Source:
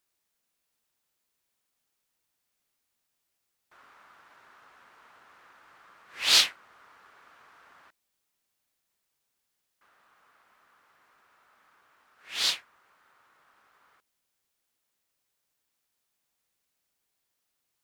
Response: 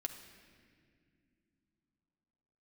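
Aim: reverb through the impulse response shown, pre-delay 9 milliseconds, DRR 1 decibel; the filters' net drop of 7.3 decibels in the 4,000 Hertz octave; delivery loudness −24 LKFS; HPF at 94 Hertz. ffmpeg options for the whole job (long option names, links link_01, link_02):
-filter_complex "[0:a]highpass=94,equalizer=frequency=4000:width_type=o:gain=-9,asplit=2[link_01][link_02];[1:a]atrim=start_sample=2205,adelay=9[link_03];[link_02][link_03]afir=irnorm=-1:irlink=0,volume=0dB[link_04];[link_01][link_04]amix=inputs=2:normalize=0,volume=4dB"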